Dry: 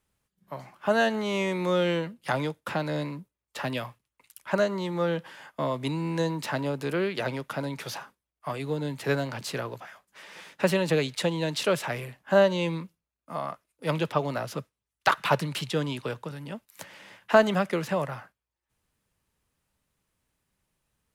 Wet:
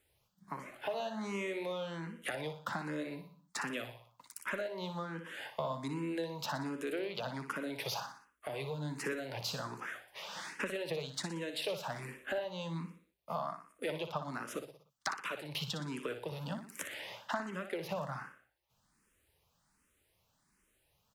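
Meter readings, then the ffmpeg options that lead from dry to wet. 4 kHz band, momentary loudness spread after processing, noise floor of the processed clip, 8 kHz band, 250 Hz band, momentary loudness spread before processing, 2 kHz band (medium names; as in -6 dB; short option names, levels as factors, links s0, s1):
-7.0 dB, 7 LU, -77 dBFS, -5.5 dB, -11.0 dB, 18 LU, -9.5 dB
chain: -filter_complex "[0:a]lowshelf=f=180:g=-5,acompressor=threshold=0.0112:ratio=10,aecho=1:1:60|120|180|240|300:0.355|0.17|0.0817|0.0392|0.0188,asplit=2[s0][s1];[s1]afreqshift=1.3[s2];[s0][s2]amix=inputs=2:normalize=1,volume=2"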